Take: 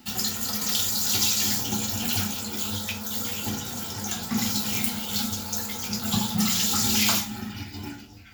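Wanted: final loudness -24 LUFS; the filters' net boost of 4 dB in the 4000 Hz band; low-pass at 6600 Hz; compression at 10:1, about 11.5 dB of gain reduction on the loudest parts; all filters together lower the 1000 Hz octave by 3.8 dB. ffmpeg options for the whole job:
-af "lowpass=6.6k,equalizer=f=1k:t=o:g=-5.5,equalizer=f=4k:t=o:g=6,acompressor=threshold=-30dB:ratio=10,volume=8.5dB"

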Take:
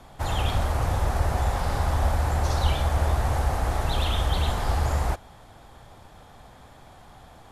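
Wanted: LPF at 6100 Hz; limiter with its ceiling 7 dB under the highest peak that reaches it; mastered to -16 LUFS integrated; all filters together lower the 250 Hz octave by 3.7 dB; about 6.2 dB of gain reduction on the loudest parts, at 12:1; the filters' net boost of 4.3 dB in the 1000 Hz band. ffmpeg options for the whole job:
-af "lowpass=6.1k,equalizer=f=250:t=o:g=-6,equalizer=f=1k:t=o:g=6,acompressor=threshold=-24dB:ratio=12,volume=16.5dB,alimiter=limit=-6dB:level=0:latency=1"

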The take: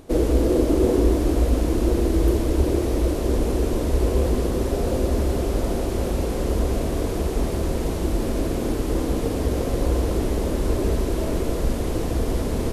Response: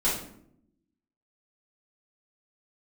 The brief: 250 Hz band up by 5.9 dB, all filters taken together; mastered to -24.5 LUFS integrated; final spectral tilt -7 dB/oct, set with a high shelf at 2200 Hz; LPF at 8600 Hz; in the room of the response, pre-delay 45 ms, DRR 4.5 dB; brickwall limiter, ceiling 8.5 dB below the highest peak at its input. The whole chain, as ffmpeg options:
-filter_complex "[0:a]lowpass=8.6k,equalizer=f=250:t=o:g=7.5,highshelf=f=2.2k:g=8,alimiter=limit=-12dB:level=0:latency=1,asplit=2[a][b];[1:a]atrim=start_sample=2205,adelay=45[c];[b][c]afir=irnorm=-1:irlink=0,volume=-15dB[d];[a][d]amix=inputs=2:normalize=0,volume=-5dB"

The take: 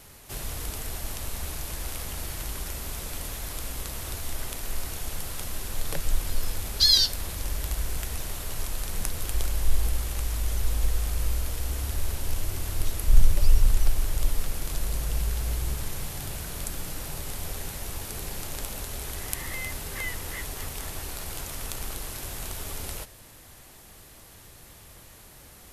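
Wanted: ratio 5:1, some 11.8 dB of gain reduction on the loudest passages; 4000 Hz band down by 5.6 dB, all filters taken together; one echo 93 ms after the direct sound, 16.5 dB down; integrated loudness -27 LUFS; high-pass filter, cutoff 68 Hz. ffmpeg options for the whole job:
-af "highpass=68,equalizer=f=4k:t=o:g=-6.5,acompressor=threshold=-35dB:ratio=5,aecho=1:1:93:0.15,volume=11.5dB"

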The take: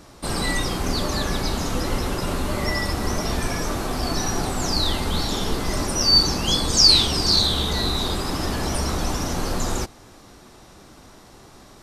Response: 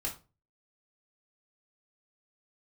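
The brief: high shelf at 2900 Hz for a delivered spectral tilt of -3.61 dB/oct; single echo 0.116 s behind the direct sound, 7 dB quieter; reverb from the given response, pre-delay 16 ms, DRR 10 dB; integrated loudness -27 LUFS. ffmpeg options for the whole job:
-filter_complex "[0:a]highshelf=f=2.9k:g=-3,aecho=1:1:116:0.447,asplit=2[a][b];[1:a]atrim=start_sample=2205,adelay=16[c];[b][c]afir=irnorm=-1:irlink=0,volume=-12dB[d];[a][d]amix=inputs=2:normalize=0,volume=-5.5dB"

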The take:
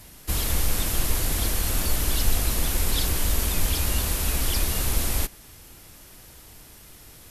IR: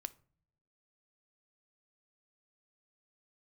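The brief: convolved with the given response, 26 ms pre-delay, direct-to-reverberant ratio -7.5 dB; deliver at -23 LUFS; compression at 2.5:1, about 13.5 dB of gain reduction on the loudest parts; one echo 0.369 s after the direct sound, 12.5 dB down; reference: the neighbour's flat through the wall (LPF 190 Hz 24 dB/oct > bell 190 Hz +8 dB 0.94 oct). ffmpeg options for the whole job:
-filter_complex "[0:a]acompressor=threshold=-38dB:ratio=2.5,aecho=1:1:369:0.237,asplit=2[a][b];[1:a]atrim=start_sample=2205,adelay=26[c];[b][c]afir=irnorm=-1:irlink=0,volume=10.5dB[d];[a][d]amix=inputs=2:normalize=0,lowpass=f=190:w=0.5412,lowpass=f=190:w=1.3066,equalizer=f=190:t=o:w=0.94:g=8,volume=10dB"

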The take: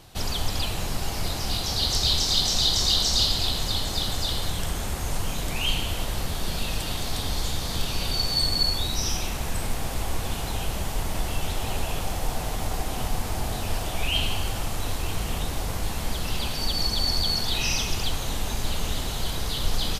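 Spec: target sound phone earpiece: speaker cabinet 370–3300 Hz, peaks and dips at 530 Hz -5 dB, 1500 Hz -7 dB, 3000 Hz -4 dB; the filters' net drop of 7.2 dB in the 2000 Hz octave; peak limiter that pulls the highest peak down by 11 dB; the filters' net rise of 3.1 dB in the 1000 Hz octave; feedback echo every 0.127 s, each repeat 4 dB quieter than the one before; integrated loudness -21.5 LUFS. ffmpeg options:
-af "equalizer=f=1k:t=o:g=7,equalizer=f=2k:t=o:g=-7.5,alimiter=limit=-19.5dB:level=0:latency=1,highpass=370,equalizer=f=530:t=q:w=4:g=-5,equalizer=f=1.5k:t=q:w=4:g=-7,equalizer=f=3k:t=q:w=4:g=-4,lowpass=f=3.3k:w=0.5412,lowpass=f=3.3k:w=1.3066,aecho=1:1:127|254|381|508|635|762|889|1016|1143:0.631|0.398|0.25|0.158|0.0994|0.0626|0.0394|0.0249|0.0157,volume=13.5dB"

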